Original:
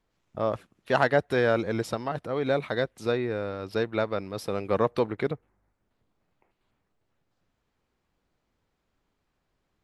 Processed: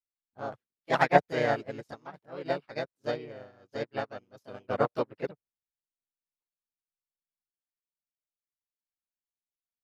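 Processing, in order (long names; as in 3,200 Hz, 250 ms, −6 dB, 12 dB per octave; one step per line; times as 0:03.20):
pitch-shifted copies added +3 semitones −5 dB, +4 semitones −1 dB
expander for the loud parts 2.5 to 1, over −41 dBFS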